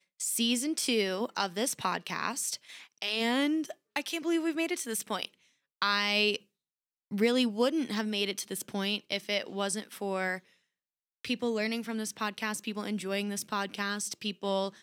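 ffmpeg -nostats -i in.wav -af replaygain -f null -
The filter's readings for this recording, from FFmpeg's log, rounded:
track_gain = +10.4 dB
track_peak = 0.138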